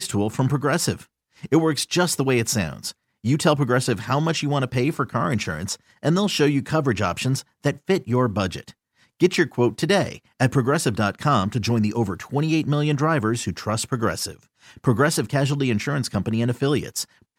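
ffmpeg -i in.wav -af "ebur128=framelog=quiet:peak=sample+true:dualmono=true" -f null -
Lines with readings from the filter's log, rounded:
Integrated loudness:
  I:         -19.3 LUFS
  Threshold: -29.6 LUFS
Loudness range:
  LRA:         1.7 LU
  Threshold: -39.6 LUFS
  LRA low:   -20.3 LUFS
  LRA high:  -18.7 LUFS
Sample peak:
  Peak:       -3.9 dBFS
True peak:
  Peak:       -3.9 dBFS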